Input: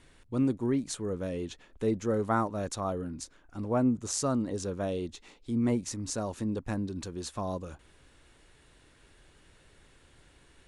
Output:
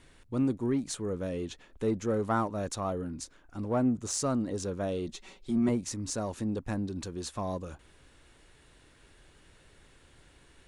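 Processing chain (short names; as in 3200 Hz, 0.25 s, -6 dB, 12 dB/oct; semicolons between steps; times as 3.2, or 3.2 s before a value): 5.07–5.69 comb 5.3 ms, depth 85%; in parallel at -8.5 dB: soft clip -31.5 dBFS, distortion -7 dB; on the sum: gain -2 dB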